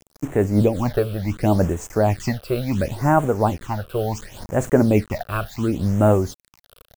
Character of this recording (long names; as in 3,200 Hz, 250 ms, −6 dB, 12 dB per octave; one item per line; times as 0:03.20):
a quantiser's noise floor 6 bits, dither none
phaser sweep stages 8, 0.7 Hz, lowest notch 250–4,700 Hz
amplitude modulation by smooth noise